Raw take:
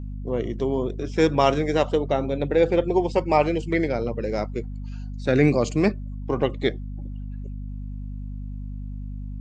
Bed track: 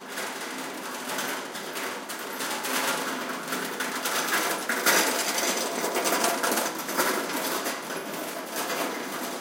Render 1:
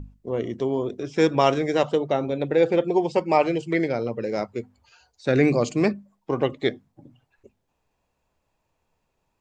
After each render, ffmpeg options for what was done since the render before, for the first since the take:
-af "bandreject=f=50:t=h:w=6,bandreject=f=100:t=h:w=6,bandreject=f=150:t=h:w=6,bandreject=f=200:t=h:w=6,bandreject=f=250:t=h:w=6"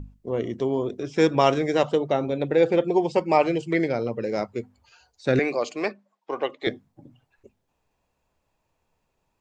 -filter_complex "[0:a]asettb=1/sr,asplit=3[a][b][c];[a]atrim=end=5.394[d];[b]atrim=start=5.39:end=6.67,asetpts=PTS-STARTPTS,afade=t=in:d=0.004:c=qsin,afade=t=out:st=1.276:d=0.004:c=qsin,highpass=510,lowpass=5.4k[e];[c]atrim=start=6.666[f];[d][e]acrossfade=d=0.004:c1=hsin:c2=qsin[g];[g][f]acrossfade=d=0.004:c1=qsin:c2=hsin"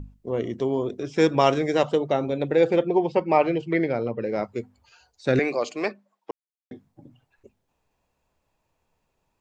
-filter_complex "[0:a]asettb=1/sr,asplit=3[a][b][c];[a]atrim=end=2.834[d];[b]atrim=start=2.83:end=4.44,asetpts=PTS-STARTPTS,afade=t=in:d=0.004:c=qsin,afade=t=out:st=1.606:d=0.004:c=qsin,lowpass=3.2k[e];[c]atrim=start=4.436[f];[d][e]acrossfade=d=0.004:c1=hsin:c2=qsin[g];[g][f]acrossfade=d=0.004:c1=qsin:c2=hsin,asplit=3[h][i][j];[h]atrim=end=6.31,asetpts=PTS-STARTPTS,afade=t=out:st=6.306:d=0.004:c=hsin[k];[i]atrim=start=6.31:end=6.71,asetpts=PTS-STARTPTS,volume=0[l];[j]atrim=start=6.71,asetpts=PTS-STARTPTS,afade=t=in:d=0.004:c=hsin[m];[k][l][m]concat=n=3:v=0:a=1"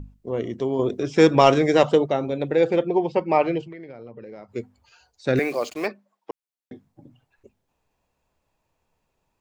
-filter_complex "[0:a]asettb=1/sr,asplit=3[a][b][c];[a]atrim=end=0.794[d];[b]atrim=start=0.79:end=2.06,asetpts=PTS-STARTPTS,afade=t=in:d=0.004:c=qsin,afade=t=out:st=1.266:d=0.004:c=qsin,acontrast=28[e];[c]atrim=start=2.056[f];[d][e]acrossfade=d=0.004:c1=hsin:c2=qsin[g];[g][f]acrossfade=d=0.004:c1=qsin:c2=hsin,asettb=1/sr,asplit=3[h][i][j];[h]atrim=end=3.664[k];[i]atrim=start=3.66:end=4.55,asetpts=PTS-STARTPTS,afade=t=in:d=0.004:c=qsin,afade=t=out:st=0.886:d=0.004:c=qsin,acompressor=threshold=-37dB:ratio=6:attack=3.2:release=140:knee=1:detection=peak[l];[j]atrim=start=4.546[m];[k][l]acrossfade=d=0.004:c1=hsin:c2=qsin[n];[n][m]acrossfade=d=0.004:c1=qsin:c2=hsin,asplit=3[o][p][q];[o]afade=t=out:st=5.36:d=0.02[r];[p]acrusher=bits=6:mix=0:aa=0.5,afade=t=in:st=5.36:d=0.02,afade=t=out:st=5.86:d=0.02[s];[q]afade=t=in:st=5.86:d=0.02[t];[r][s][t]amix=inputs=3:normalize=0"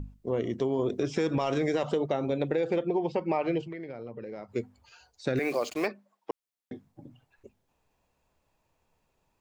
-af "alimiter=limit=-14dB:level=0:latency=1:release=92,acompressor=threshold=-25dB:ratio=3"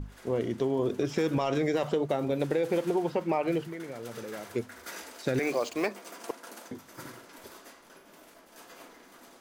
-filter_complex "[1:a]volume=-21dB[a];[0:a][a]amix=inputs=2:normalize=0"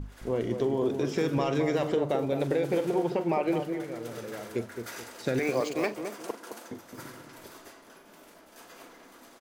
-filter_complex "[0:a]asplit=2[a][b];[b]adelay=43,volume=-14dB[c];[a][c]amix=inputs=2:normalize=0,asplit=2[d][e];[e]adelay=215,lowpass=f=1k:p=1,volume=-6dB,asplit=2[f][g];[g]adelay=215,lowpass=f=1k:p=1,volume=0.35,asplit=2[h][i];[i]adelay=215,lowpass=f=1k:p=1,volume=0.35,asplit=2[j][k];[k]adelay=215,lowpass=f=1k:p=1,volume=0.35[l];[d][f][h][j][l]amix=inputs=5:normalize=0"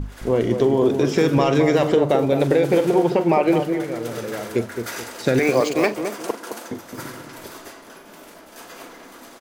-af "volume=10dB"

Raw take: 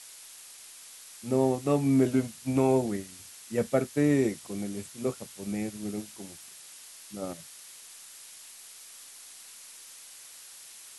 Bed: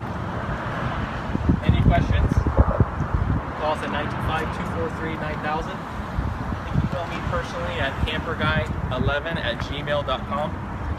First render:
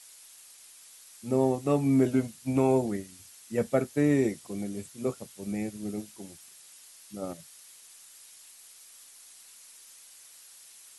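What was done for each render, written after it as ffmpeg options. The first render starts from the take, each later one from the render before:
-af "afftdn=nr=6:nf=-49"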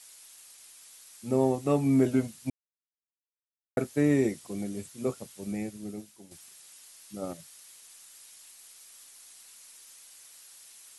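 -filter_complex "[0:a]asplit=4[a][b][c][d];[a]atrim=end=2.5,asetpts=PTS-STARTPTS,afade=t=out:st=2.496:d=0.004:c=hsin[e];[b]atrim=start=2.5:end=3.77,asetpts=PTS-STARTPTS,volume=0[f];[c]atrim=start=3.77:end=6.31,asetpts=PTS-STARTPTS,afade=t=in:d=0.004:c=hsin,afade=t=out:st=1.61:d=0.93:silence=0.334965[g];[d]atrim=start=6.31,asetpts=PTS-STARTPTS,afade=t=in:d=0.004:c=hsin:silence=0.334965[h];[e][f][g][h]concat=n=4:v=0:a=1"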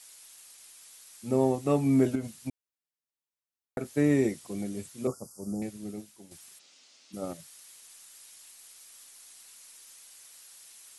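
-filter_complex "[0:a]asettb=1/sr,asplit=3[a][b][c];[a]atrim=end=2.154[d];[b]atrim=start=2.15:end=3.94,asetpts=PTS-STARTPTS,afade=t=in:d=0.004:c=qsin,afade=t=out:st=1.786:d=0.004:c=qsin,acompressor=threshold=-29dB:ratio=3:attack=3.2:release=140:knee=1:detection=peak[e];[c]atrim=start=3.936[f];[d][e]acrossfade=d=0.004:c1=hsin:c2=qsin[g];[g][f]acrossfade=d=0.004:c1=qsin:c2=hsin,asettb=1/sr,asplit=3[h][i][j];[h]atrim=end=5.074[k];[i]atrim=start=5.07:end=5.62,asetpts=PTS-STARTPTS,afade=t=in:d=0.004:c=qsin,afade=t=out:st=0.546:d=0.004:c=qsin,asuperstop=centerf=2600:order=20:qfactor=0.79[l];[j]atrim=start=5.616[m];[k][l]acrossfade=d=0.004:c1=hsin:c2=qsin[n];[n][m]acrossfade=d=0.004:c1=qsin:c2=hsin,asplit=3[o][p][q];[o]afade=t=out:st=6.58:d=0.02[r];[p]highpass=f=160:w=0.5412,highpass=f=160:w=1.3066,equalizer=f=260:t=q:w=4:g=7,equalizer=f=540:t=q:w=4:g=3,equalizer=f=1k:t=q:w=4:g=-5,equalizer=f=1.7k:t=q:w=4:g=-6,lowpass=f=6k:w=0.5412,lowpass=f=6k:w=1.3066,afade=t=in:st=6.58:d=0.02,afade=t=out:st=7.12:d=0.02[s];[q]afade=t=in:st=7.12:d=0.02[t];[r][s][t]amix=inputs=3:normalize=0"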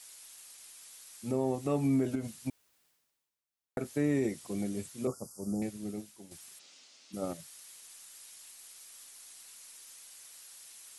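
-af "alimiter=limit=-21dB:level=0:latency=1:release=143,areverse,acompressor=mode=upward:threshold=-52dB:ratio=2.5,areverse"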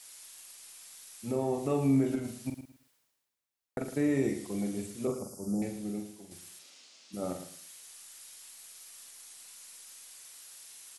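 -filter_complex "[0:a]asplit=2[a][b];[b]adelay=44,volume=-6dB[c];[a][c]amix=inputs=2:normalize=0,asplit=2[d][e];[e]aecho=0:1:111|222|333:0.299|0.0716|0.0172[f];[d][f]amix=inputs=2:normalize=0"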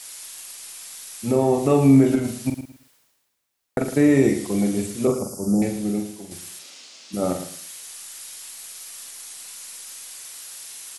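-af "volume=12dB"

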